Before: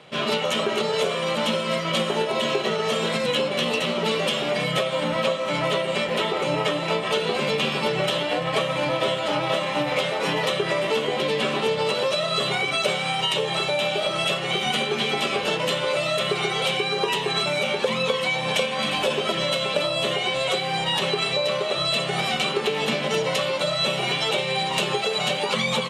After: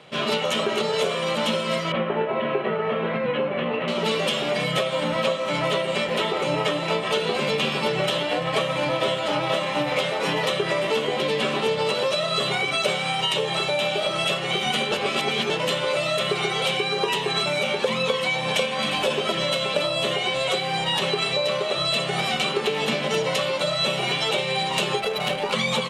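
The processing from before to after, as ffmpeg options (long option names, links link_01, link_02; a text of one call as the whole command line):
ffmpeg -i in.wav -filter_complex "[0:a]asettb=1/sr,asplit=3[link_01][link_02][link_03];[link_01]atrim=end=1.924[link_04];[link_02]atrim=start=1.92:end=3.88,asetpts=PTS-STARTPTS,afade=type=in:duration=0.004:curve=qsin,afade=type=out:start_time=1.956:duration=0.004:curve=qsin,lowpass=frequency=2300:width=0.5412,lowpass=frequency=2300:width=1.3066[link_05];[link_03]atrim=start=3.876[link_06];[link_04][link_05]acrossfade=duration=0.004:curve1=hsin:curve2=qsin[link_07];[link_07][link_06]acrossfade=duration=0.004:curve1=qsin:curve2=hsin,asplit=3[link_08][link_09][link_10];[link_08]afade=type=out:start_time=24.99:duration=0.02[link_11];[link_09]adynamicsmooth=sensitivity=2:basefreq=1500,afade=type=in:start_time=24.99:duration=0.02,afade=type=out:start_time=25.51:duration=0.02[link_12];[link_10]afade=type=in:start_time=25.51:duration=0.02[link_13];[link_11][link_12][link_13]amix=inputs=3:normalize=0,asplit=3[link_14][link_15][link_16];[link_14]atrim=end=14.922[link_17];[link_15]atrim=start=14.918:end=15.502,asetpts=PTS-STARTPTS,areverse[link_18];[link_16]atrim=start=15.498[link_19];[link_17][link_18]acrossfade=duration=0.004:curve1=hsin:curve2=hsin[link_20];[link_20][link_19]acrossfade=duration=0.004:curve1=hsin:curve2=hsin" out.wav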